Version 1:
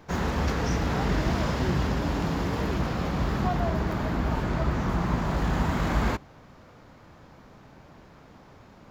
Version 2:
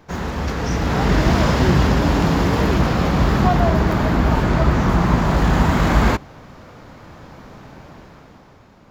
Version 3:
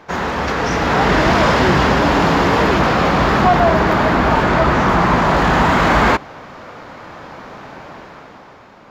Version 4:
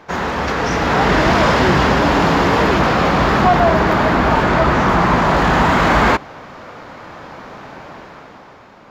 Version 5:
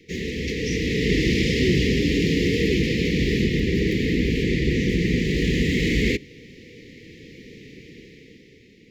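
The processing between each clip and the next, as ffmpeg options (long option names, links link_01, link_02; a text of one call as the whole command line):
ffmpeg -i in.wav -af "dynaudnorm=framelen=140:gausssize=13:maxgain=9dB,volume=2dB" out.wav
ffmpeg -i in.wav -filter_complex "[0:a]asplit=2[link_01][link_02];[link_02]highpass=frequency=720:poles=1,volume=17dB,asoftclip=type=tanh:threshold=-1dB[link_03];[link_01][link_03]amix=inputs=2:normalize=0,lowpass=frequency=2400:poles=1,volume=-6dB" out.wav
ffmpeg -i in.wav -af anull out.wav
ffmpeg -i in.wav -af "asuperstop=centerf=960:order=20:qfactor=0.68,volume=-4dB" out.wav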